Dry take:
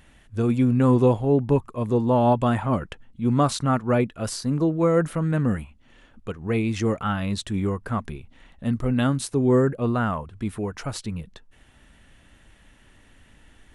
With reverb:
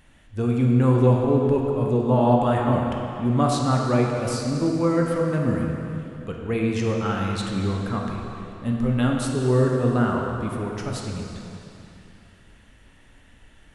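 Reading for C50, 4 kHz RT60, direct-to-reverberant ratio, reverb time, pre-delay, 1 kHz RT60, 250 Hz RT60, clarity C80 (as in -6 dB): 1.0 dB, 2.7 s, -0.5 dB, 2.9 s, 7 ms, 2.9 s, 3.0 s, 2.0 dB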